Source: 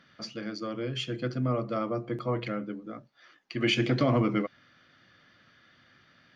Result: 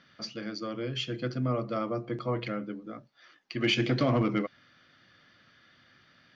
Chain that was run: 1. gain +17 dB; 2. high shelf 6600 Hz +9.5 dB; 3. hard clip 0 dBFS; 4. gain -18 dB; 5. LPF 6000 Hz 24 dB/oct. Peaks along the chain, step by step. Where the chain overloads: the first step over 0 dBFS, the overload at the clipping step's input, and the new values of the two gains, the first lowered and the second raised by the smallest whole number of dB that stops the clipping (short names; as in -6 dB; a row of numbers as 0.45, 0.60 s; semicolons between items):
+2.5, +4.0, 0.0, -18.0, -16.5 dBFS; step 1, 4.0 dB; step 1 +13 dB, step 4 -14 dB